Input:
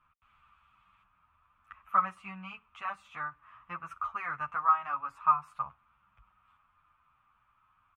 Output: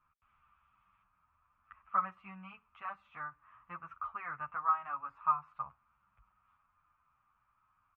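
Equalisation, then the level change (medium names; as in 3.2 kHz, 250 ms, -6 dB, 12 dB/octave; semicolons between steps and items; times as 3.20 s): low-pass 2.3 kHz 12 dB/octave; -5.0 dB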